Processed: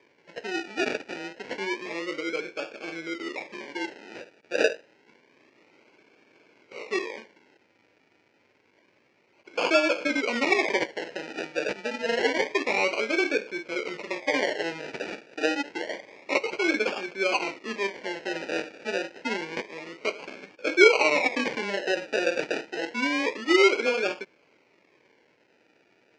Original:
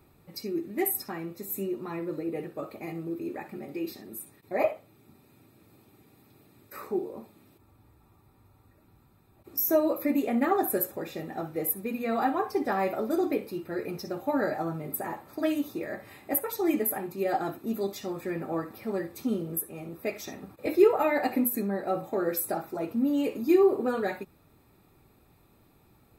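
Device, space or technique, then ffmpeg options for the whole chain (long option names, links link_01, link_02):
circuit-bent sampling toy: -af "acrusher=samples=32:mix=1:aa=0.000001:lfo=1:lforange=19.2:lforate=0.28,highpass=450,equalizer=frequency=490:width_type=q:width=4:gain=3,equalizer=frequency=740:width_type=q:width=4:gain=-7,equalizer=frequency=1200:width_type=q:width=4:gain=-8,equalizer=frequency=2300:width_type=q:width=4:gain=9,equalizer=frequency=3600:width_type=q:width=4:gain=-6,lowpass=frequency=5400:width=0.5412,lowpass=frequency=5400:width=1.3066,volume=5dB"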